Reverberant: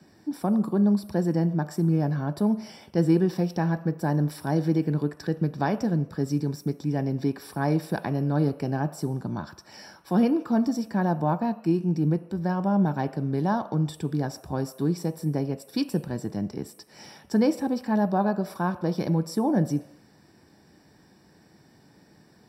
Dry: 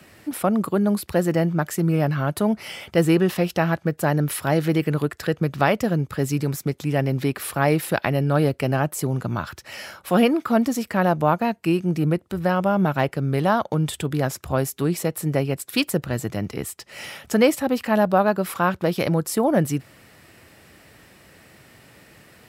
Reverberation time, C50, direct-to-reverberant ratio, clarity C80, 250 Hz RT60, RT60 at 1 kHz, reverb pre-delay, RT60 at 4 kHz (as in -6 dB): 0.80 s, 15.0 dB, 10.5 dB, 17.0 dB, 0.60 s, 0.80 s, 3 ms, 0.80 s